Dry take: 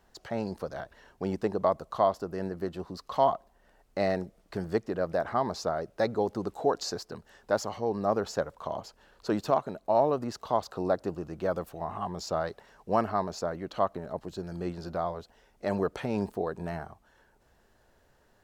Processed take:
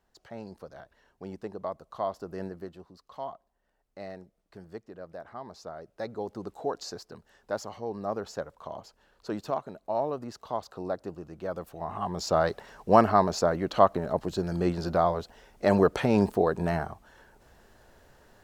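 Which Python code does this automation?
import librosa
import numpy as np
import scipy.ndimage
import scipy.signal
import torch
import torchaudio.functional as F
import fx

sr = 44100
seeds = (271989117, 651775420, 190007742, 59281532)

y = fx.gain(x, sr, db=fx.line((1.85, -9.0), (2.41, -2.0), (2.93, -13.5), (5.39, -13.5), (6.44, -5.0), (11.46, -5.0), (12.49, 7.5)))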